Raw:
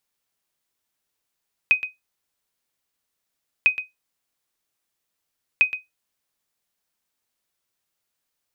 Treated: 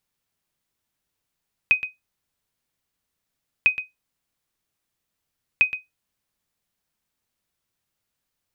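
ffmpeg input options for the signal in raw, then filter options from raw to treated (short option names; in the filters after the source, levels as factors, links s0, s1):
-f lavfi -i "aevalsrc='0.422*(sin(2*PI*2510*mod(t,1.95))*exp(-6.91*mod(t,1.95)/0.17)+0.237*sin(2*PI*2510*max(mod(t,1.95)-0.12,0))*exp(-6.91*max(mod(t,1.95)-0.12,0)/0.17))':d=5.85:s=44100"
-af "bass=f=250:g=8,treble=f=4000:g=-2"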